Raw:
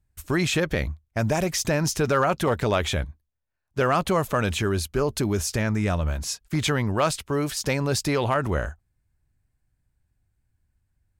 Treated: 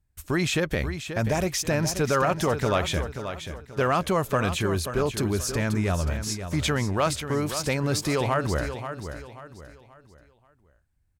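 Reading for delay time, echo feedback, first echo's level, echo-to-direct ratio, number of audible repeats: 0.533 s, 35%, -9.5 dB, -9.0 dB, 3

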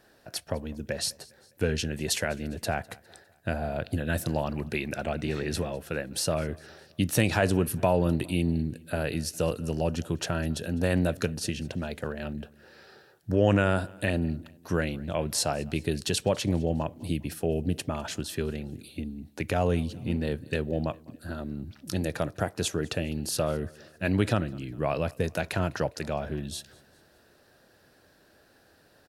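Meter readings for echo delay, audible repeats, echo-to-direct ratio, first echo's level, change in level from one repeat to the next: 0.203 s, 2, -23.0 dB, -24.0 dB, -6.0 dB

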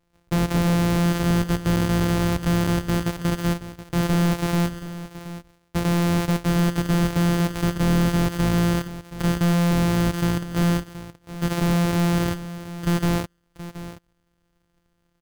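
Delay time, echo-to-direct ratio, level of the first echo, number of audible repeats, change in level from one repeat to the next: 0.725 s, -14.0 dB, -14.0 dB, 1, no steady repeat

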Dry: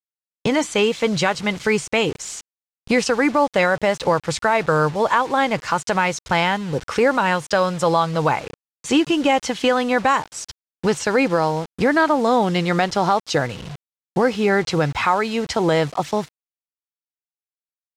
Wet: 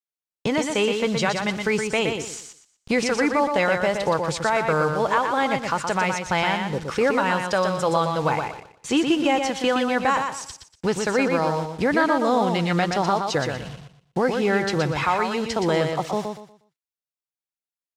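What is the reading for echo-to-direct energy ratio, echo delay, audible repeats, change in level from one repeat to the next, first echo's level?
-5.0 dB, 0.12 s, 3, -11.5 dB, -5.5 dB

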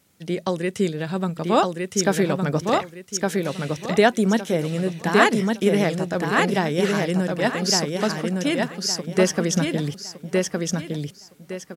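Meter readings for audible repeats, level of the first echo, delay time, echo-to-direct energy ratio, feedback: 3, -3.0 dB, 1.162 s, -2.5 dB, 28%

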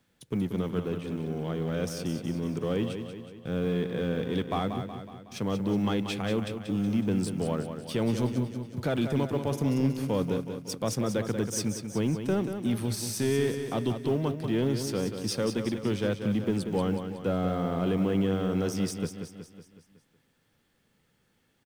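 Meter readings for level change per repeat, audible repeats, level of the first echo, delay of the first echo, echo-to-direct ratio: -5.5 dB, 6, -8.0 dB, 0.185 s, -6.5 dB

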